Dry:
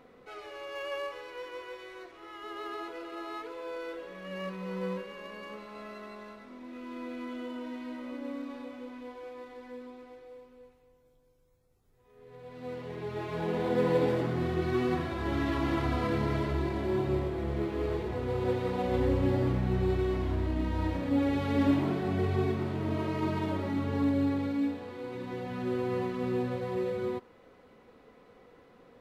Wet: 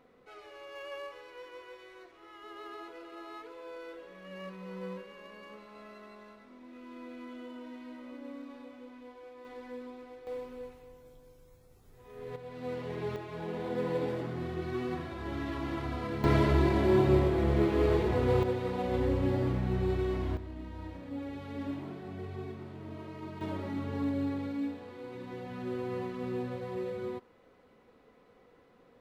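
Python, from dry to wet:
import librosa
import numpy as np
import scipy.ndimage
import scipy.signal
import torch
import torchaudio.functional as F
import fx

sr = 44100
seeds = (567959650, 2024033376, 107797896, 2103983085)

y = fx.gain(x, sr, db=fx.steps((0.0, -6.0), (9.45, 1.0), (10.27, 10.5), (12.36, 2.0), (13.16, -6.0), (16.24, 5.5), (18.43, -2.0), (20.37, -12.0), (23.41, -4.5)))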